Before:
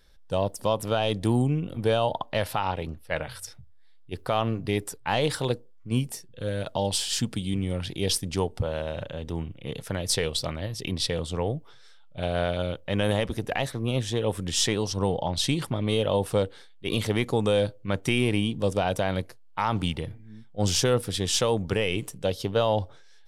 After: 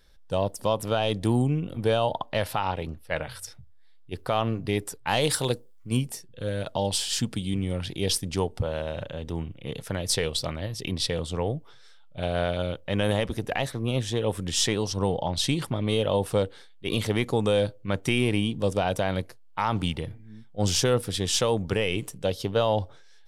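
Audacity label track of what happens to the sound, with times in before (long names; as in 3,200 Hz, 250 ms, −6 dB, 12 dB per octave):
5.070000	5.970000	high-shelf EQ 5,500 Hz +12 dB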